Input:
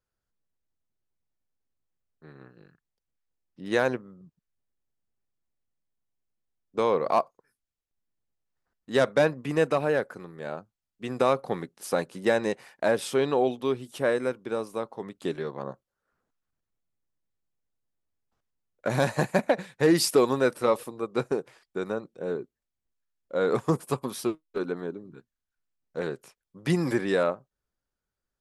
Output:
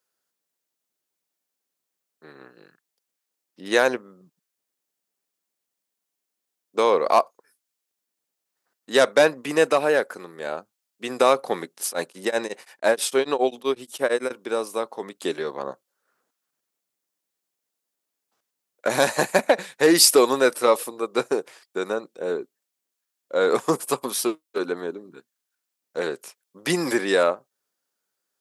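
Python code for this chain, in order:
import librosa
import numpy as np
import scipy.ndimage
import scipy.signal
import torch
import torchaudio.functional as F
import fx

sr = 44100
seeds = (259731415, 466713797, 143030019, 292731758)

y = scipy.signal.sosfilt(scipy.signal.butter(2, 310.0, 'highpass', fs=sr, output='sos'), x)
y = fx.high_shelf(y, sr, hz=3800.0, db=8.5)
y = fx.tremolo_abs(y, sr, hz=fx.line((11.87, 4.9), (14.3, 10.0)), at=(11.87, 14.3), fade=0.02)
y = y * librosa.db_to_amplitude(5.5)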